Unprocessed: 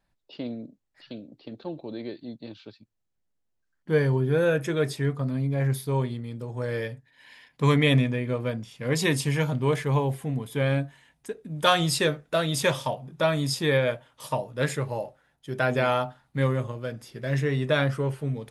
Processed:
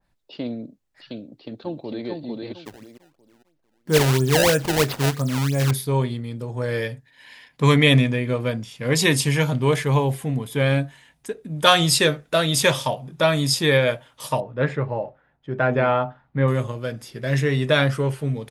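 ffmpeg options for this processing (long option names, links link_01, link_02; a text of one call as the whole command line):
ffmpeg -i in.wav -filter_complex "[0:a]asplit=2[link_01][link_02];[link_02]afade=type=in:start_time=1.19:duration=0.01,afade=type=out:start_time=2.07:duration=0.01,aecho=0:1:450|900|1350|1800:0.749894|0.187474|0.0468684|0.0117171[link_03];[link_01][link_03]amix=inputs=2:normalize=0,asettb=1/sr,asplit=3[link_04][link_05][link_06];[link_04]atrim=end=2.654[link_07];[link_05]atrim=start=2.65:end=5.71,asetpts=PTS-STARTPTS,afade=type=in:duration=0.004:curve=qsin,afade=type=out:start_time=3.056:duration=0.004:curve=qsin,acrusher=samples=23:mix=1:aa=0.000001:lfo=1:lforange=36.8:lforate=3[link_08];[link_06]atrim=start=5.706[link_09];[link_07][link_08]acrossfade=duration=0.004:curve1=hsin:curve2=qsin[link_10];[link_10][link_09]acrossfade=duration=0.004:curve1=qsin:curve2=hsin,asettb=1/sr,asplit=3[link_11][link_12][link_13];[link_11]atrim=end=14.404[link_14];[link_12]atrim=start=14.4:end=16.48,asetpts=PTS-STARTPTS,afade=type=in:duration=0.004:curve=qsin,afade=type=out:start_time=2.076:duration=0.004:curve=qsin,lowpass=1700[link_15];[link_13]atrim=start=16.476[link_16];[link_14][link_15]acrossfade=duration=0.004:curve1=hsin:curve2=qsin[link_17];[link_17][link_16]acrossfade=duration=0.004:curve1=qsin:curve2=hsin,adynamicequalizer=threshold=0.0126:dfrequency=2000:dqfactor=0.7:tfrequency=2000:tqfactor=0.7:attack=5:release=100:ratio=0.375:range=2:mode=boostabove:tftype=highshelf,volume=4.5dB" out.wav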